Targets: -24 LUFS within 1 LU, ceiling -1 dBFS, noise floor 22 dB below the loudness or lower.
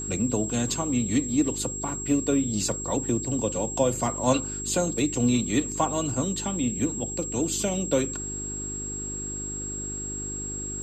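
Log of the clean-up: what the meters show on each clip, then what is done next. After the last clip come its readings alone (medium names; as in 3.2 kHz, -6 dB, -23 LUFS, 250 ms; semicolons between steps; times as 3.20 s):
hum 50 Hz; highest harmonic 400 Hz; hum level -35 dBFS; steady tone 7.6 kHz; tone level -32 dBFS; loudness -26.5 LUFS; peak level -9.0 dBFS; loudness target -24.0 LUFS
-> de-hum 50 Hz, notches 8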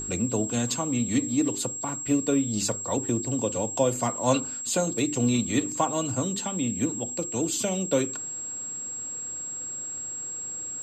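hum not found; steady tone 7.6 kHz; tone level -32 dBFS
-> band-stop 7.6 kHz, Q 30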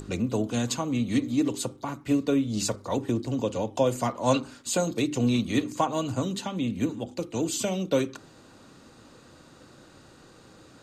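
steady tone not found; loudness -28.0 LUFS; peak level -10.0 dBFS; loudness target -24.0 LUFS
-> trim +4 dB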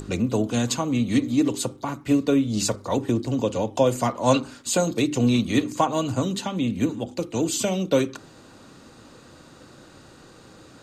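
loudness -24.0 LUFS; peak level -6.0 dBFS; noise floor -49 dBFS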